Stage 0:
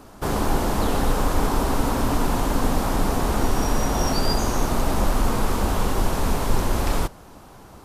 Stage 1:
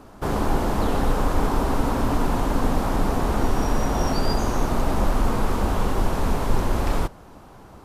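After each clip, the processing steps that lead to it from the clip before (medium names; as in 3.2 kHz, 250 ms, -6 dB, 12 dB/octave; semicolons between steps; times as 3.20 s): treble shelf 3.5 kHz -7.5 dB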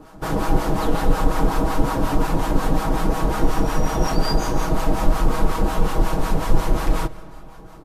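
comb 6.3 ms; harmonic tremolo 5.5 Hz, depth 70%, crossover 720 Hz; reverberation RT60 2.8 s, pre-delay 75 ms, DRR 18.5 dB; trim +3.5 dB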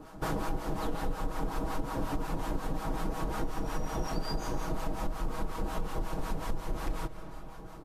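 compression 6:1, threshold -24 dBFS, peak gain reduction 15.5 dB; trim -4.5 dB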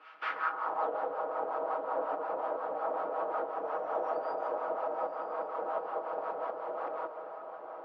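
cabinet simulation 470–4200 Hz, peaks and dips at 510 Hz +4 dB, 1.3 kHz +9 dB, 3.8 kHz -5 dB; echo that smears into a reverb 910 ms, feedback 44%, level -11 dB; band-pass sweep 2.5 kHz -> 630 Hz, 0.23–0.89 s; trim +8.5 dB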